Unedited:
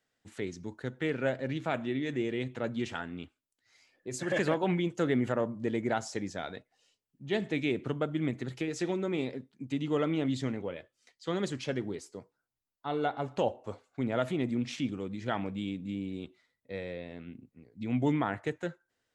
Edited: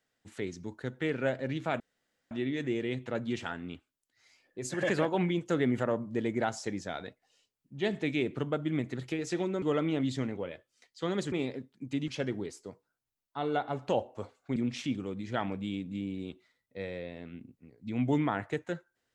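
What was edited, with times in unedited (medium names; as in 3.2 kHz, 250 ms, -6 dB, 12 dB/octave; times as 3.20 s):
1.80 s: insert room tone 0.51 s
9.11–9.87 s: move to 11.57 s
14.05–14.50 s: delete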